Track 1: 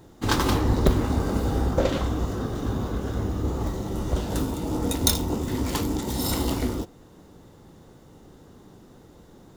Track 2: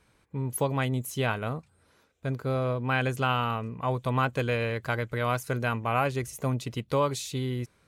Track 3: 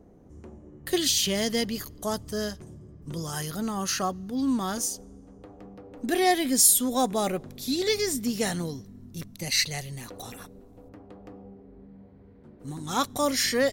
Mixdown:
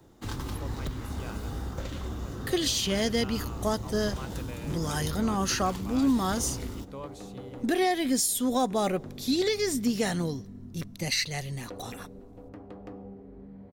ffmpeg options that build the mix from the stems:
ffmpeg -i stem1.wav -i stem2.wav -i stem3.wav -filter_complex "[0:a]acrossover=split=110|230|1100|6400[link_01][link_02][link_03][link_04][link_05];[link_01]acompressor=threshold=-27dB:ratio=4[link_06];[link_02]acompressor=threshold=-36dB:ratio=4[link_07];[link_03]acompressor=threshold=-39dB:ratio=4[link_08];[link_04]acompressor=threshold=-38dB:ratio=4[link_09];[link_05]acompressor=threshold=-44dB:ratio=4[link_10];[link_06][link_07][link_08][link_09][link_10]amix=inputs=5:normalize=0,volume=-6.5dB[link_11];[1:a]volume=-16.5dB[link_12];[2:a]highshelf=frequency=6900:gain=-8,adelay=1600,volume=2.5dB[link_13];[link_11][link_12][link_13]amix=inputs=3:normalize=0,alimiter=limit=-16.5dB:level=0:latency=1:release=286" out.wav

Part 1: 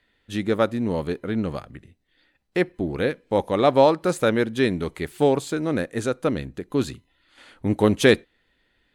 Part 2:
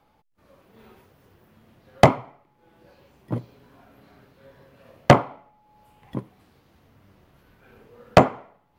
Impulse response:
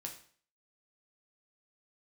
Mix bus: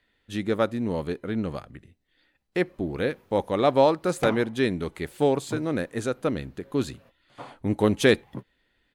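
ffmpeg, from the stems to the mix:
-filter_complex "[0:a]volume=-3dB,asplit=2[link_01][link_02];[1:a]alimiter=limit=-8dB:level=0:latency=1,asoftclip=type=tanh:threshold=-16dB,adelay=2200,volume=-5.5dB[link_03];[link_02]apad=whole_len=484330[link_04];[link_03][link_04]sidechaingate=range=-38dB:threshold=-53dB:ratio=16:detection=peak[link_05];[link_01][link_05]amix=inputs=2:normalize=0"

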